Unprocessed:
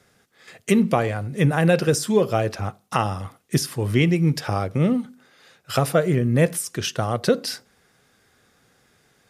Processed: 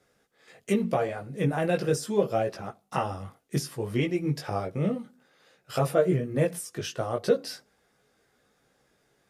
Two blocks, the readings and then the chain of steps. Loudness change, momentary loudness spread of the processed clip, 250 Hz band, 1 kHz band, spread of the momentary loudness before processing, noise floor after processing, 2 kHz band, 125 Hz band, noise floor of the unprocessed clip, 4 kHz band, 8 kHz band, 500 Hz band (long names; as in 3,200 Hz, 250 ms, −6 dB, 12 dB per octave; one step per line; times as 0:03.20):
−6.5 dB, 9 LU, −8.0 dB, −6.0 dB, 8 LU, −70 dBFS, −9.0 dB, −9.0 dB, −62 dBFS, −9.5 dB, −9.5 dB, −4.5 dB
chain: parametric band 520 Hz +5.5 dB 1.6 octaves
multi-voice chorus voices 6, 0.71 Hz, delay 18 ms, depth 3.8 ms
level −6.5 dB